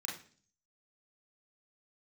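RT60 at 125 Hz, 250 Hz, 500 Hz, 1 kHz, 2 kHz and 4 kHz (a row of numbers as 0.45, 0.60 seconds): 0.70, 0.65, 0.50, 0.40, 0.45, 0.50 seconds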